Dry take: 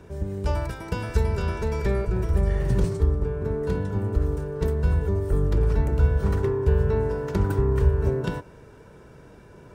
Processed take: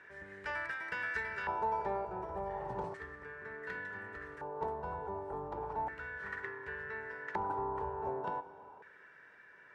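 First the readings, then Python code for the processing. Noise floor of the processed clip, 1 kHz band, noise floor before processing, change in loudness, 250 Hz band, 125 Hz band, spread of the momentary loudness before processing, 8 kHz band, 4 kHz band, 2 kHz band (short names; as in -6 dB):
-58 dBFS, 0.0 dB, -48 dBFS, -14.5 dB, -20.0 dB, -29.5 dB, 6 LU, n/a, under -10 dB, +0.5 dB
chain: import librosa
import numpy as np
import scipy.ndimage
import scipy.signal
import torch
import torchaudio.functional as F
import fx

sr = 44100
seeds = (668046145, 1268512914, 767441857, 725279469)

y = fx.rev_schroeder(x, sr, rt60_s=2.7, comb_ms=33, drr_db=14.5)
y = fx.rider(y, sr, range_db=4, speed_s=2.0)
y = fx.filter_lfo_bandpass(y, sr, shape='square', hz=0.34, low_hz=850.0, high_hz=1800.0, q=7.0)
y = y * 10.0 ** (8.0 / 20.0)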